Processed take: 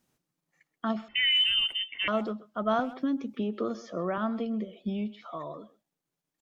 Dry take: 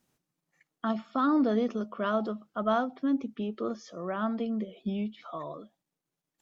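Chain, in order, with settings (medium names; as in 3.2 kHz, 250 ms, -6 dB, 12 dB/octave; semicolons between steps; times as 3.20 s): 1.08–2.08 s: frequency inversion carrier 3.3 kHz; speakerphone echo 130 ms, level -18 dB; 2.79–4.18 s: three bands compressed up and down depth 100%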